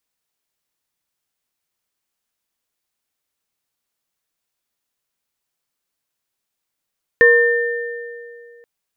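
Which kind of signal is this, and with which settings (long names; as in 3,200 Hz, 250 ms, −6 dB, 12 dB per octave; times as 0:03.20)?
inharmonic partials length 1.43 s, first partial 474 Hz, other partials 1,070/1,800 Hz, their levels −18.5/1.5 dB, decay 2.48 s, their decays 0.77/1.94 s, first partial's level −9.5 dB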